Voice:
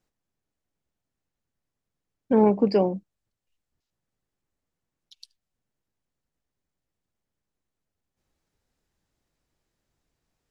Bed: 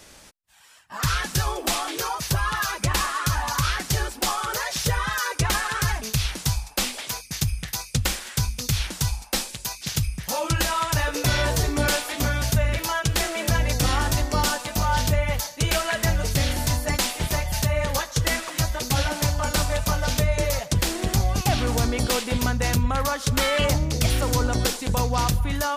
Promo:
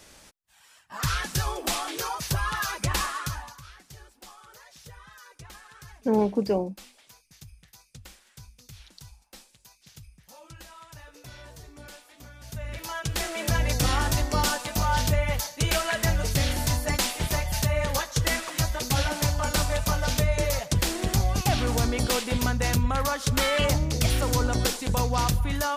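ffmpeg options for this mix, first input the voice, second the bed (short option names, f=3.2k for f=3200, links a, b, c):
-filter_complex "[0:a]adelay=3750,volume=-4dB[a];[1:a]volume=18dB,afade=t=out:st=3.04:d=0.52:silence=0.1,afade=t=in:st=12.39:d=1.28:silence=0.0841395[b];[a][b]amix=inputs=2:normalize=0"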